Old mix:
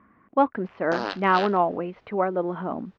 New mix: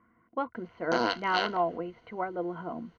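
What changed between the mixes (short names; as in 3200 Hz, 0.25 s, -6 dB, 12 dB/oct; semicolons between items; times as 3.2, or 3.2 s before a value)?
speech -9.0 dB; master: add ripple EQ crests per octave 1.9, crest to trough 11 dB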